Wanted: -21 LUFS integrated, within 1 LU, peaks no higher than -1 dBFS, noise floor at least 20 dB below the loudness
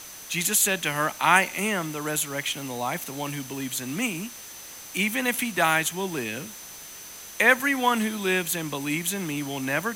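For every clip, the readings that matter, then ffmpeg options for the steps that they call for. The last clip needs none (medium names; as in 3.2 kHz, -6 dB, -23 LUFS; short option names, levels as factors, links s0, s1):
steady tone 6.1 kHz; tone level -45 dBFS; noise floor -42 dBFS; noise floor target -45 dBFS; loudness -25.0 LUFS; peak level -4.0 dBFS; loudness target -21.0 LUFS
-> -af "bandreject=f=6100:w=30"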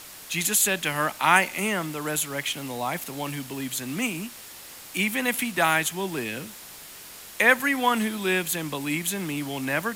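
steady tone not found; noise floor -44 dBFS; noise floor target -45 dBFS
-> -af "afftdn=nr=6:nf=-44"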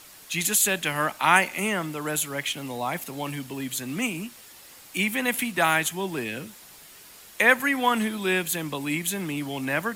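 noise floor -48 dBFS; loudness -25.0 LUFS; peak level -4.0 dBFS; loudness target -21.0 LUFS
-> -af "volume=1.58,alimiter=limit=0.891:level=0:latency=1"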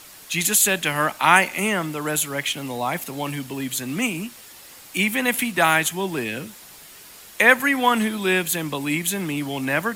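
loudness -21.0 LUFS; peak level -1.0 dBFS; noise floor -44 dBFS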